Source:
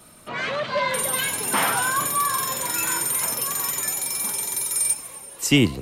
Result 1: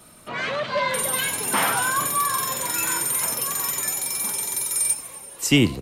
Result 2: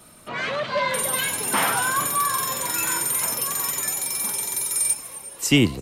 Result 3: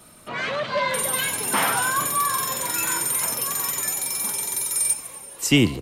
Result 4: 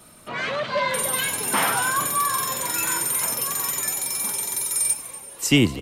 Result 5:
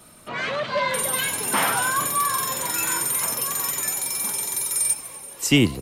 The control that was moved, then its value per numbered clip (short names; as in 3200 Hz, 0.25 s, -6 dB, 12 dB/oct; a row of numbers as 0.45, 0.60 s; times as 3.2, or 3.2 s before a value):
echo, time: 77, 359, 140, 239, 1039 ms